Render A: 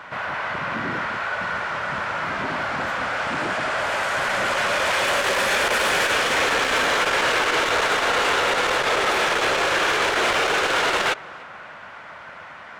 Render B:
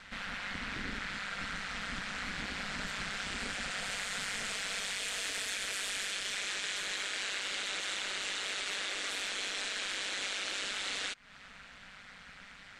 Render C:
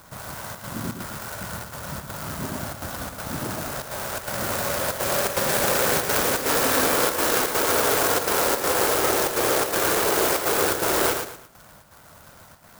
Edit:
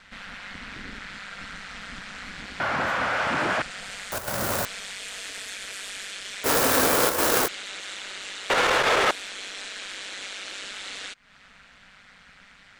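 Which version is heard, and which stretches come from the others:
B
2.6–3.62 from A
4.12–4.65 from C
6.44–7.48 from C
8.5–9.11 from A

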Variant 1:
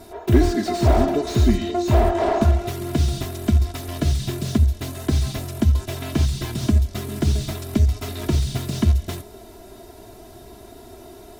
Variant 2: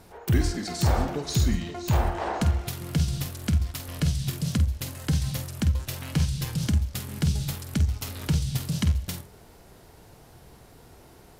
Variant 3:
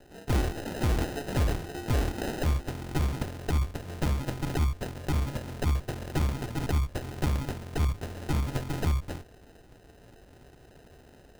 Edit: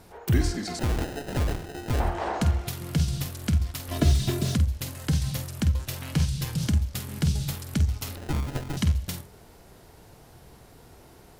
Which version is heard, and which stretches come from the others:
2
0.79–2 from 3
3.91–4.55 from 1
8.16–8.77 from 3

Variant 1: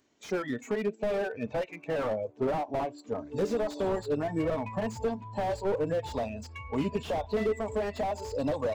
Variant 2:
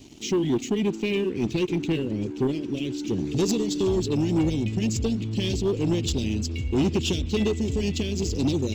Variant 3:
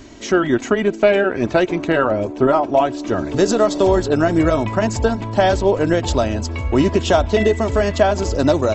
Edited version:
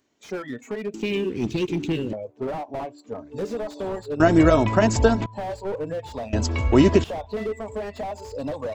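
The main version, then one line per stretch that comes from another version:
1
0.94–2.13 from 2
4.2–5.26 from 3
6.33–7.04 from 3

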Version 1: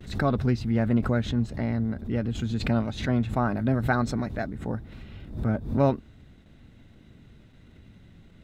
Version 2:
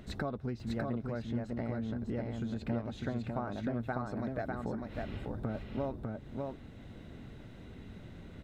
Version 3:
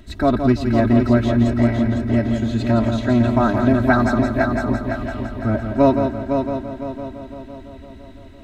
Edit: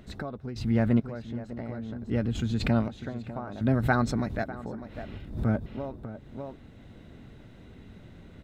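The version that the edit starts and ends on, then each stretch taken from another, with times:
2
0.56–1 from 1
2.11–2.88 from 1
3.61–4.44 from 1
5.18–5.66 from 1
not used: 3

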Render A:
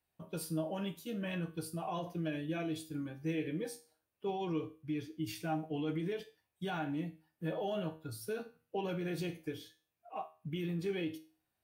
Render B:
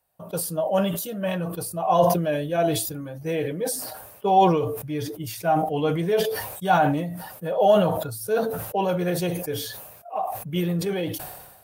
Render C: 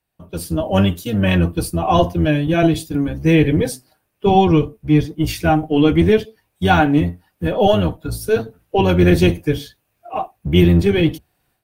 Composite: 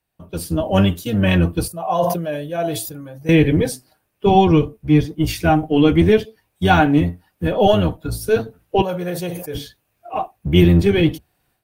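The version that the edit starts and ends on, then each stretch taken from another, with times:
C
1.68–3.29 from B
8.82–9.55 from B
not used: A

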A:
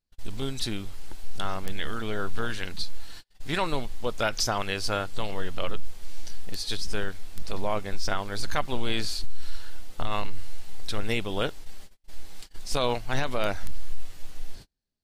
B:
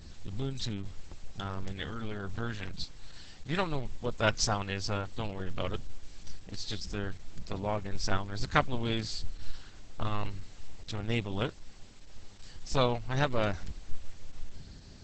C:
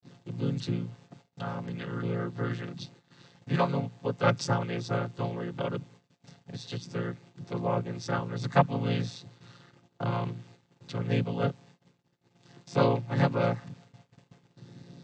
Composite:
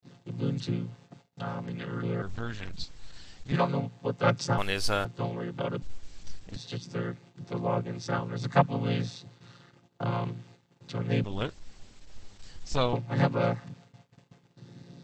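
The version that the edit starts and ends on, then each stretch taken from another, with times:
C
2.22–3.52 from B
4.58–5.05 from A
5.82–6.56 from B
11.24–12.93 from B

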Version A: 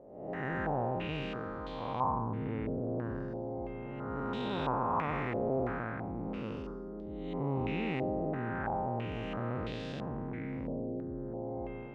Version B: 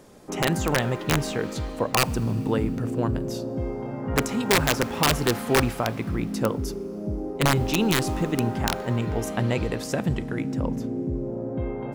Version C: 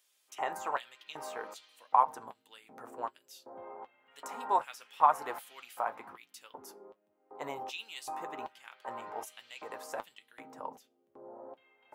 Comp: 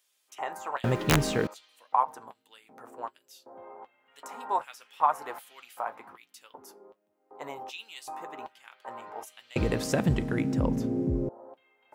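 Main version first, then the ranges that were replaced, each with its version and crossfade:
C
0.84–1.47 from B
9.56–11.29 from B
not used: A

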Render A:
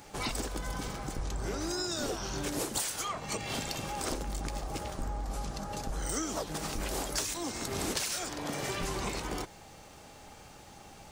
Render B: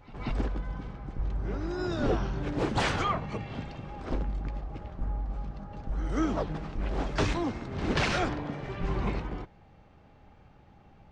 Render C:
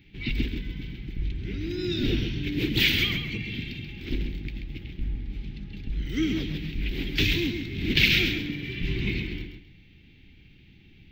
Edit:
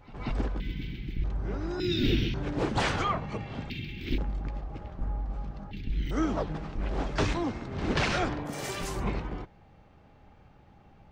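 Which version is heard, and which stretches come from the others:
B
0.6–1.24 from C
1.8–2.34 from C
3.7–4.18 from C
5.71–6.11 from C
8.51–8.98 from A, crossfade 0.16 s

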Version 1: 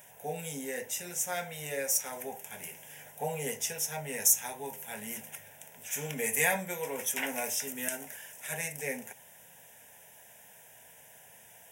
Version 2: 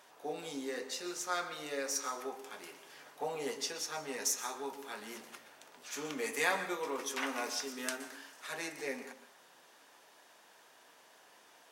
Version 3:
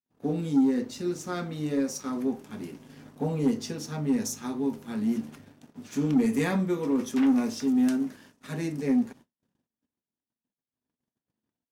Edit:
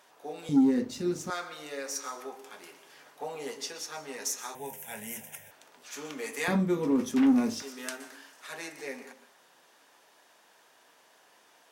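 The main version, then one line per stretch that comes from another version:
2
0.49–1.3 from 3
4.55–5.51 from 1
6.48–7.62 from 3

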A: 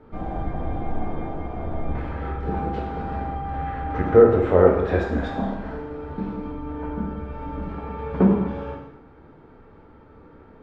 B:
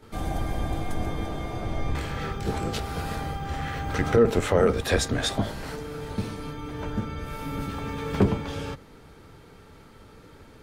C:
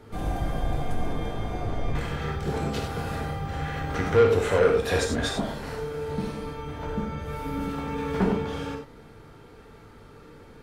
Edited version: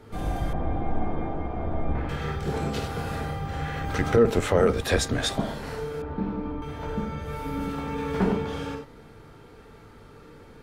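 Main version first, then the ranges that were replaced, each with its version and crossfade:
C
0.53–2.09 from A
3.85–5.4 from B
6.02–6.62 from A

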